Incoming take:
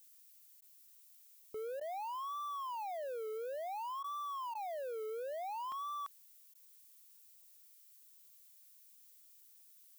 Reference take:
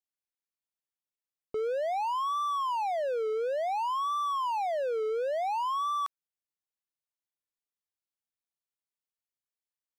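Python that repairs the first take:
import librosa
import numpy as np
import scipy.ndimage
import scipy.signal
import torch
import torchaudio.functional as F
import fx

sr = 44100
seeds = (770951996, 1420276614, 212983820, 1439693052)

y = fx.fix_interpolate(x, sr, at_s=(1.42, 5.72), length_ms=1.9)
y = fx.fix_interpolate(y, sr, at_s=(0.61, 1.8, 4.03, 4.54, 6.54), length_ms=10.0)
y = fx.noise_reduce(y, sr, print_start_s=9.1, print_end_s=9.6, reduce_db=30.0)
y = fx.gain(y, sr, db=fx.steps((0.0, 0.0), (0.95, 11.0)))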